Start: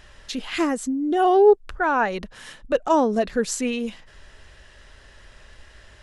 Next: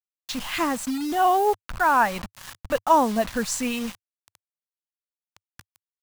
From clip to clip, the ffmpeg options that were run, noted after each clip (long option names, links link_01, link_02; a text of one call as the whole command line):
ffmpeg -i in.wav -af "acrusher=bits=5:mix=0:aa=0.000001,equalizer=frequency=100:width_type=o:width=0.67:gain=7,equalizer=frequency=400:width_type=o:width=0.67:gain=-11,equalizer=frequency=1000:width_type=o:width=0.67:gain=5" out.wav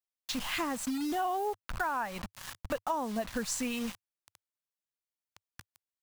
ffmpeg -i in.wav -af "acompressor=threshold=-27dB:ratio=6,volume=-3dB" out.wav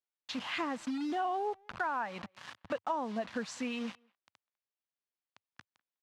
ffmpeg -i in.wav -filter_complex "[0:a]highpass=170,lowpass=3900,asplit=2[link_01][link_02];[link_02]adelay=200,highpass=300,lowpass=3400,asoftclip=type=hard:threshold=-29.5dB,volume=-28dB[link_03];[link_01][link_03]amix=inputs=2:normalize=0,volume=-1.5dB" out.wav